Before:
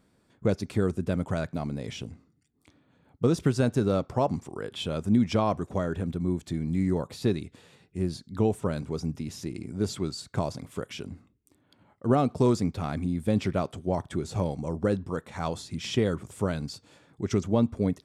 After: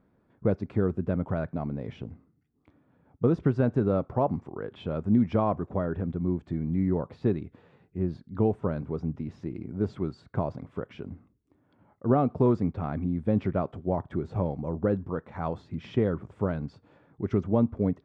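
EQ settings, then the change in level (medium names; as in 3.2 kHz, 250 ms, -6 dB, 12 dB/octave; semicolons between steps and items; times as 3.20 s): low-pass 1.5 kHz 12 dB/octave; 0.0 dB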